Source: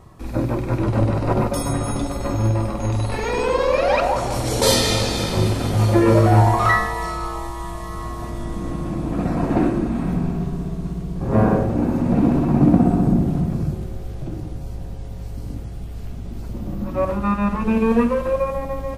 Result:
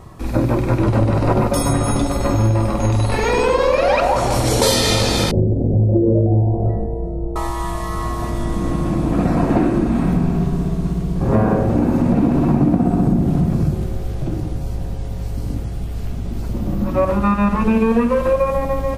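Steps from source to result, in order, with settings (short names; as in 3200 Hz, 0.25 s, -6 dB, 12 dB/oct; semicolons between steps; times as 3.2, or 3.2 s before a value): 5.31–7.36 inverse Chebyshev low-pass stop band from 1100 Hz, stop band 40 dB; compressor 6:1, threshold -18 dBFS, peak gain reduction 9.5 dB; gain +6.5 dB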